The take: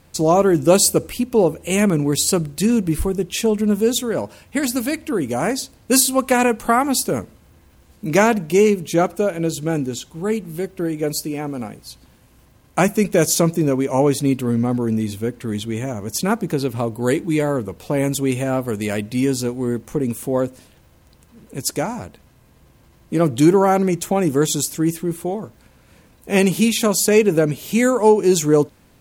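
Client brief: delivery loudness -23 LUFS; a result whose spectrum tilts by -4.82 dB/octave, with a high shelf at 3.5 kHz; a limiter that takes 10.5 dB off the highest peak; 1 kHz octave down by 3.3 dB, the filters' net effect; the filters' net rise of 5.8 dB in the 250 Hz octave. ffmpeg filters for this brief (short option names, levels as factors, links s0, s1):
-af "equalizer=f=250:t=o:g=7.5,equalizer=f=1000:t=o:g=-6,highshelf=f=3500:g=7,volume=0.501,alimiter=limit=0.251:level=0:latency=1"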